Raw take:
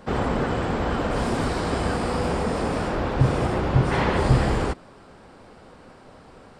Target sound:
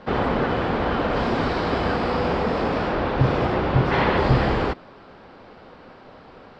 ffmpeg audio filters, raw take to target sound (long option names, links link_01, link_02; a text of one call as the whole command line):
ffmpeg -i in.wav -af "lowpass=frequency=4600:width=0.5412,lowpass=frequency=4600:width=1.3066,lowshelf=frequency=180:gain=-6,volume=3.5dB" out.wav